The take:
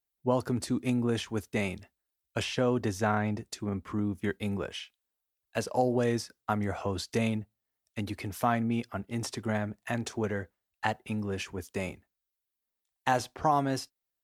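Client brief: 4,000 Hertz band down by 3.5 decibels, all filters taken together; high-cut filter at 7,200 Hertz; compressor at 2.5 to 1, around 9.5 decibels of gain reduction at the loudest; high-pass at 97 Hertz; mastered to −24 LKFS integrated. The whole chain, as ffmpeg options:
ffmpeg -i in.wav -af "highpass=97,lowpass=7200,equalizer=frequency=4000:width_type=o:gain=-4.5,acompressor=threshold=-36dB:ratio=2.5,volume=15.5dB" out.wav

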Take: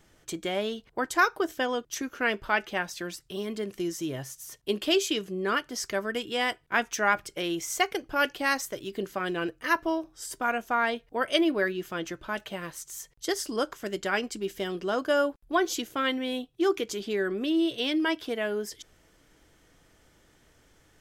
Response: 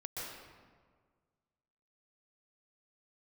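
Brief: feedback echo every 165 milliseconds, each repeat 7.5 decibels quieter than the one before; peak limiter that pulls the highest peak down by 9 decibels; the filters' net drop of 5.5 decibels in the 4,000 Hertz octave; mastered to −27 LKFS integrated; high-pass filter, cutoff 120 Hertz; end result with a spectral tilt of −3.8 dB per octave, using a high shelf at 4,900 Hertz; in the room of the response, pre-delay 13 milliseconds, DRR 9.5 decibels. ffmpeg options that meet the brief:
-filter_complex "[0:a]highpass=120,equalizer=frequency=4000:width_type=o:gain=-7,highshelf=frequency=4900:gain=-3,alimiter=limit=-19.5dB:level=0:latency=1,aecho=1:1:165|330|495|660|825:0.422|0.177|0.0744|0.0312|0.0131,asplit=2[link_01][link_02];[1:a]atrim=start_sample=2205,adelay=13[link_03];[link_02][link_03]afir=irnorm=-1:irlink=0,volume=-10dB[link_04];[link_01][link_04]amix=inputs=2:normalize=0,volume=4dB"

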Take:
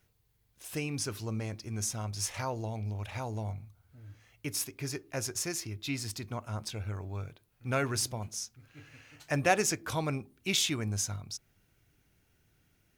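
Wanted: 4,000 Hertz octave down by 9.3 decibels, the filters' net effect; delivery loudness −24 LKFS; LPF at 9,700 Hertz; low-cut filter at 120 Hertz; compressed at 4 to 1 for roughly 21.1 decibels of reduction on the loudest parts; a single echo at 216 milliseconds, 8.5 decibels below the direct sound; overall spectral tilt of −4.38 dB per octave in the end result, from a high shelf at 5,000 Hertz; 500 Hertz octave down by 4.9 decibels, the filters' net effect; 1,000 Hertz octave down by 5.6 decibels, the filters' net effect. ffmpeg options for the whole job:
ffmpeg -i in.wav -af "highpass=120,lowpass=9700,equalizer=frequency=500:width_type=o:gain=-4.5,equalizer=frequency=1000:width_type=o:gain=-5.5,equalizer=frequency=4000:width_type=o:gain=-8.5,highshelf=frequency=5000:gain=-6.5,acompressor=threshold=-52dB:ratio=4,aecho=1:1:216:0.376,volume=29dB" out.wav

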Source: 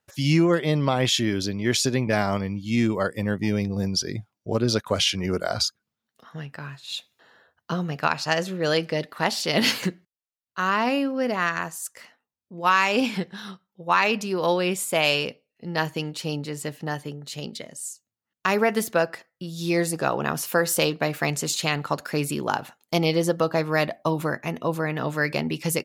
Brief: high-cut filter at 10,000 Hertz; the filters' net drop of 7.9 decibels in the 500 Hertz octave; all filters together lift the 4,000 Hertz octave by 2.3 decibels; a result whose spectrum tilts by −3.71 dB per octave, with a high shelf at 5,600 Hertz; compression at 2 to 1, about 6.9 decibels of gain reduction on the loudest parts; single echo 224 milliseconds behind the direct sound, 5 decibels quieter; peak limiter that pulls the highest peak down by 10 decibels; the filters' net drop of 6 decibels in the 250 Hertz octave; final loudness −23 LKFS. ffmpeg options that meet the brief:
ffmpeg -i in.wav -af "lowpass=10000,equalizer=frequency=250:width_type=o:gain=-6,equalizer=frequency=500:width_type=o:gain=-8.5,equalizer=frequency=4000:width_type=o:gain=4.5,highshelf=frequency=5600:gain=-3,acompressor=threshold=-29dB:ratio=2,alimiter=limit=-21dB:level=0:latency=1,aecho=1:1:224:0.562,volume=9dB" out.wav

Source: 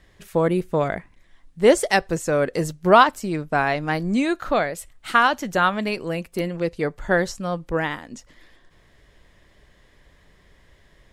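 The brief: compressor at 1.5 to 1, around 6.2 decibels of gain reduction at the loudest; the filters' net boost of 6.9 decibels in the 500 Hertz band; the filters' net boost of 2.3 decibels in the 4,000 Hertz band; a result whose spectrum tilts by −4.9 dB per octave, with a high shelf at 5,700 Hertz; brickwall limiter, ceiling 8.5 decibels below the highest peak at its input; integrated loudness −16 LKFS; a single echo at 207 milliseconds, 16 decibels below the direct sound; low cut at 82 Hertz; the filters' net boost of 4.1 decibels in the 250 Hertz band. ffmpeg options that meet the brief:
ffmpeg -i in.wav -af "highpass=82,equalizer=frequency=250:width_type=o:gain=3,equalizer=frequency=500:width_type=o:gain=7.5,equalizer=frequency=4000:width_type=o:gain=5,highshelf=frequency=5700:gain=-6,acompressor=threshold=-20dB:ratio=1.5,alimiter=limit=-11.5dB:level=0:latency=1,aecho=1:1:207:0.158,volume=7dB" out.wav

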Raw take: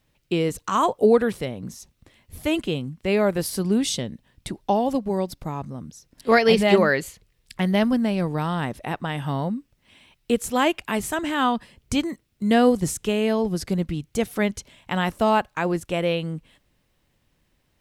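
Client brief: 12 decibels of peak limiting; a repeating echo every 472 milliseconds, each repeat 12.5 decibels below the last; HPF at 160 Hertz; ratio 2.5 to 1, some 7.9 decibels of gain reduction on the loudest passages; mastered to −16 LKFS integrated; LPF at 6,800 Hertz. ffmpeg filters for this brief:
ffmpeg -i in.wav -af "highpass=160,lowpass=6800,acompressor=threshold=-24dB:ratio=2.5,alimiter=limit=-24dB:level=0:latency=1,aecho=1:1:472|944|1416:0.237|0.0569|0.0137,volume=18dB" out.wav

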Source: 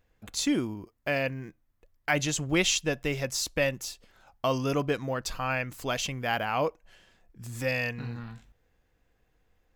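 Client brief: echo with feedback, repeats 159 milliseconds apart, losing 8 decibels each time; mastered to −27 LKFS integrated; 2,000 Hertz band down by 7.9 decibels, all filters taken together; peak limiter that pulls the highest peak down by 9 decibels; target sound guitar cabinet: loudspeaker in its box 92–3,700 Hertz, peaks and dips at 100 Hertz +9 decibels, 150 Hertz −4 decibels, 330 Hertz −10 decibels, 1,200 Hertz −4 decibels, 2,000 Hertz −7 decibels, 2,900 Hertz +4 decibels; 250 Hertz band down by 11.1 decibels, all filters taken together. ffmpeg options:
ffmpeg -i in.wav -af "equalizer=frequency=250:width_type=o:gain=-9,equalizer=frequency=2000:width_type=o:gain=-8.5,alimiter=limit=-24dB:level=0:latency=1,highpass=92,equalizer=frequency=100:width_type=q:width=4:gain=9,equalizer=frequency=150:width_type=q:width=4:gain=-4,equalizer=frequency=330:width_type=q:width=4:gain=-10,equalizer=frequency=1200:width_type=q:width=4:gain=-4,equalizer=frequency=2000:width_type=q:width=4:gain=-7,equalizer=frequency=2900:width_type=q:width=4:gain=4,lowpass=frequency=3700:width=0.5412,lowpass=frequency=3700:width=1.3066,aecho=1:1:159|318|477|636|795:0.398|0.159|0.0637|0.0255|0.0102,volume=10dB" out.wav

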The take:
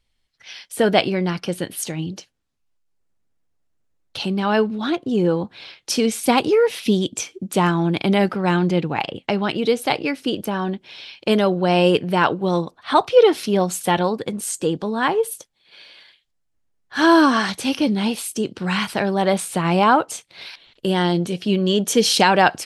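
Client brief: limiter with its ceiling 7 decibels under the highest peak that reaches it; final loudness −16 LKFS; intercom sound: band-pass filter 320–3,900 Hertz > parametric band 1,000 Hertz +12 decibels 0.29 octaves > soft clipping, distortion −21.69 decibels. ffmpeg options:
ffmpeg -i in.wav -af "alimiter=limit=-8dB:level=0:latency=1,highpass=320,lowpass=3900,equalizer=frequency=1000:width_type=o:width=0.29:gain=12,asoftclip=threshold=-5dB,volume=5dB" out.wav

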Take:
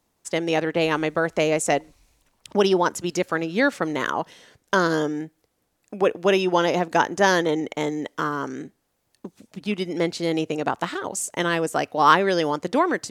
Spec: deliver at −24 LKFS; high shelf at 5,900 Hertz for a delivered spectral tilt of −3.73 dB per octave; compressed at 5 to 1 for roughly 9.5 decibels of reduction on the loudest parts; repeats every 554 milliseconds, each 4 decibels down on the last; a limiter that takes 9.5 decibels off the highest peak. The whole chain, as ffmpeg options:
ffmpeg -i in.wav -af "highshelf=frequency=5900:gain=8.5,acompressor=threshold=-20dB:ratio=5,alimiter=limit=-17dB:level=0:latency=1,aecho=1:1:554|1108|1662|2216|2770|3324|3878|4432|4986:0.631|0.398|0.25|0.158|0.0994|0.0626|0.0394|0.0249|0.0157,volume=3.5dB" out.wav

